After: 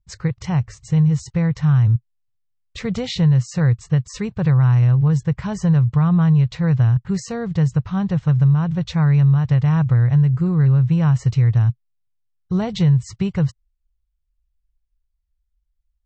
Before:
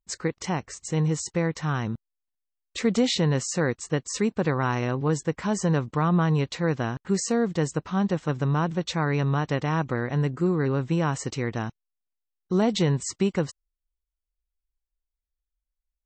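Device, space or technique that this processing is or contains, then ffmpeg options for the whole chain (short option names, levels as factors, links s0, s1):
jukebox: -af "lowpass=5500,lowshelf=f=180:t=q:w=3:g=14,acompressor=threshold=0.251:ratio=5"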